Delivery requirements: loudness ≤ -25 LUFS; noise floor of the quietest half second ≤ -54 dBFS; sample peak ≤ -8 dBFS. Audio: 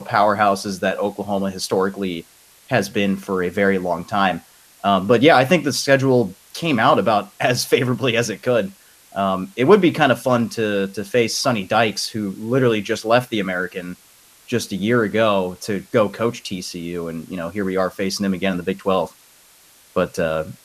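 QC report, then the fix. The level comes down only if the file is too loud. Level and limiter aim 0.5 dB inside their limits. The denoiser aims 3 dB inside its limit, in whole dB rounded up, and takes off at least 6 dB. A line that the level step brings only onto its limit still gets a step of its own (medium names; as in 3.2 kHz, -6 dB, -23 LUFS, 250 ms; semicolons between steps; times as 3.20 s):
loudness -19.5 LUFS: fail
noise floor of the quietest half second -51 dBFS: fail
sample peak -1.5 dBFS: fail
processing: trim -6 dB; peak limiter -8.5 dBFS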